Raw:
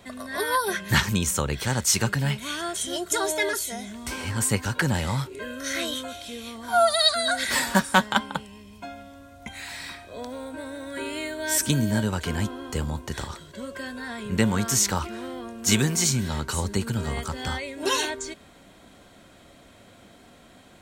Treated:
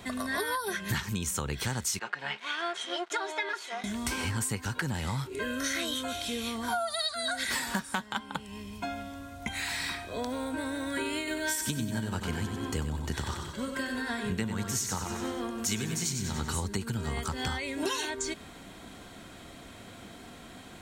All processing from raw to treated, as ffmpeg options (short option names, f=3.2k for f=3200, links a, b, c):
-filter_complex "[0:a]asettb=1/sr,asplit=3[a][b][c];[a]atrim=end=1.994[d];[b]atrim=start=1.99:end=3.84,asetpts=PTS-STARTPTS,afade=t=in:d=0.004:c=qsin,afade=t=out:st=1.846:d=0.004:c=qsin,aecho=1:1:5.6:0.38,atrim=end_sample=81585,aeval=exprs='sgn(val(0))*max(abs(val(0))-0.0106,0)':c=same,highpass=600,lowpass=2.8k[e];[c]atrim=start=3.836[f];[d][e]acrossfade=d=0.004:c1=hsin:c2=qsin[g];[g][f]acrossfade=d=0.004:c1=qsin:c2=hsin,asettb=1/sr,asplit=3[h][i][j];[h]atrim=end=11.184[k];[i]atrim=start=11.18:end=16.58,asetpts=PTS-STARTPTS,afade=t=in:d=0.004:c=qsin,afade=t=out:st=5.396:d=0.004:c=qsin,tremolo=f=6.1:d=0.47,aecho=1:1:94|188|282|376|470|564:0.447|0.21|0.0987|0.0464|0.0218|0.0102,atrim=end_sample=238140[l];[j]atrim=start=16.576[m];[k][l]acrossfade=d=0.004:c1=hsin:c2=qsin[n];[n][m]acrossfade=d=0.004:c1=qsin:c2=hsin,equalizer=f=570:w=5.2:g=-6.5,acompressor=threshold=-33dB:ratio=12,volume=4.5dB"